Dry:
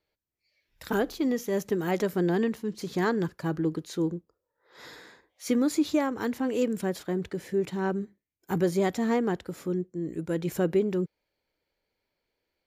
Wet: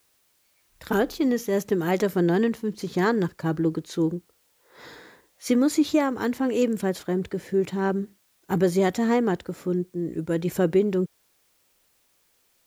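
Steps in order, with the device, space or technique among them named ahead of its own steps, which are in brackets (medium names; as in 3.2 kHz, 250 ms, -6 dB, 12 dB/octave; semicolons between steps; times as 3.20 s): plain cassette with noise reduction switched in (tape noise reduction on one side only decoder only; wow and flutter 24 cents; white noise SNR 41 dB); trim +4 dB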